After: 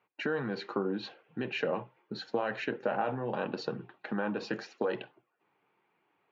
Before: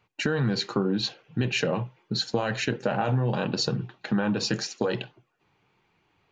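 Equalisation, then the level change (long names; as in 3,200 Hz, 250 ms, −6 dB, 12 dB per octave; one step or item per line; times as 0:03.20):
band-pass filter 280–2,200 Hz
−3.5 dB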